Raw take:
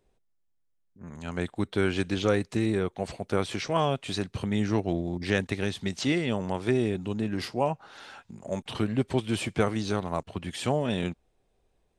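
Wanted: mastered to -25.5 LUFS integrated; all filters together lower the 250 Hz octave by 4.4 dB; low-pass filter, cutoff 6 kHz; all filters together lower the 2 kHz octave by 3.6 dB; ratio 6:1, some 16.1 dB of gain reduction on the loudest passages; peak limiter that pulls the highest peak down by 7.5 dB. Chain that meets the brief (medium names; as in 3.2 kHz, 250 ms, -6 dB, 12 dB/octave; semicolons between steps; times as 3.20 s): low-pass 6 kHz; peaking EQ 250 Hz -6 dB; peaking EQ 2 kHz -4.5 dB; compression 6:1, threshold -40 dBFS; trim +20 dB; peak limiter -12.5 dBFS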